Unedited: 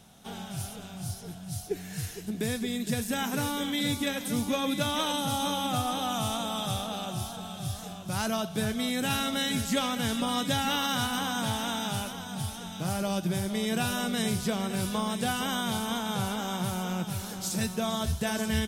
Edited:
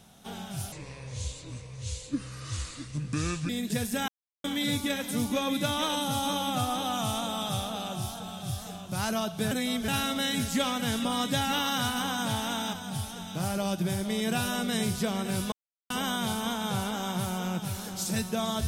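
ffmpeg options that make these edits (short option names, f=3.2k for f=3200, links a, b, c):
-filter_complex "[0:a]asplit=10[a][b][c][d][e][f][g][h][i][j];[a]atrim=end=0.724[k];[b]atrim=start=0.72:end=2.66,asetpts=PTS-STARTPTS,asetrate=30870,aresample=44100,atrim=end_sample=122220,asetpts=PTS-STARTPTS[l];[c]atrim=start=2.656:end=3.25,asetpts=PTS-STARTPTS,afade=t=out:st=0.59:d=0.004:c=hsin[m];[d]atrim=start=3.25:end=3.61,asetpts=PTS-STARTPTS,volume=0[n];[e]atrim=start=3.61:end=8.682,asetpts=PTS-STARTPTS,afade=t=in:d=0.004:c=hsin[o];[f]atrim=start=8.678:end=9.052,asetpts=PTS-STARTPTS,areverse[p];[g]atrim=start=9.048:end=11.902[q];[h]atrim=start=12.178:end=14.97,asetpts=PTS-STARTPTS,afade=t=out:st=2.788:d=0.004:c=hsin[r];[i]atrim=start=14.97:end=15.35,asetpts=PTS-STARTPTS,volume=0[s];[j]atrim=start=15.35,asetpts=PTS-STARTPTS,afade=t=in:d=0.004:c=hsin[t];[k][l]acrossfade=d=0.004:c1=hsin:c2=hsin[u];[m][n][o]concat=n=3:v=0:a=1[v];[u][v]acrossfade=d=0.004:c1=hsin:c2=hsin[w];[w][p]acrossfade=d=0.004:c1=hsin:c2=hsin[x];[x][q]acrossfade=d=0.004:c1=hsin:c2=hsin[y];[r][s][t]concat=n=3:v=0:a=1[z];[y][z]acrossfade=d=0.004:c1=hsin:c2=hsin"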